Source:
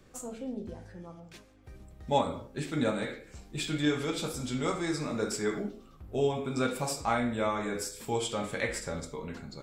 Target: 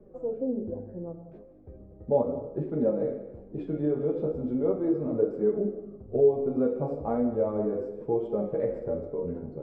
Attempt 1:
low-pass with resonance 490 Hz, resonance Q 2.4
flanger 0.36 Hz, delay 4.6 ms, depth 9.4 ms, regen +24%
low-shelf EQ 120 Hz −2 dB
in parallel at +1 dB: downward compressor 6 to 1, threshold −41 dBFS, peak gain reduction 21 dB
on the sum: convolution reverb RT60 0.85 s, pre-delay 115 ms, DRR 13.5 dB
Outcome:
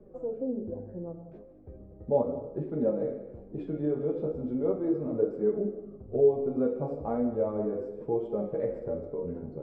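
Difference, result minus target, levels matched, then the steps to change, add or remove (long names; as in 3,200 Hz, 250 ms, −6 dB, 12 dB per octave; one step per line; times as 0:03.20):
downward compressor: peak gain reduction +7 dB
change: downward compressor 6 to 1, threshold −32.5 dBFS, peak gain reduction 13.5 dB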